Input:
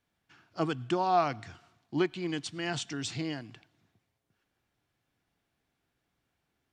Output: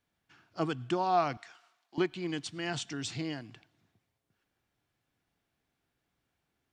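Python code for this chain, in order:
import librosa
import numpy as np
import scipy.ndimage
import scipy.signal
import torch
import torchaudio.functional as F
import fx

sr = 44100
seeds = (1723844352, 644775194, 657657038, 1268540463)

y = fx.highpass(x, sr, hz=760.0, slope=12, at=(1.37, 1.98))
y = F.gain(torch.from_numpy(y), -1.5).numpy()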